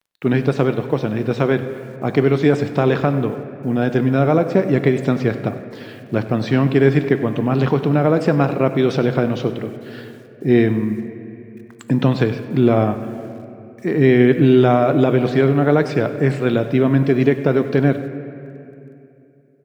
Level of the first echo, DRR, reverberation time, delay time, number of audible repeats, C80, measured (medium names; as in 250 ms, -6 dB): -16.5 dB, 9.0 dB, 2.8 s, 97 ms, 1, 10.5 dB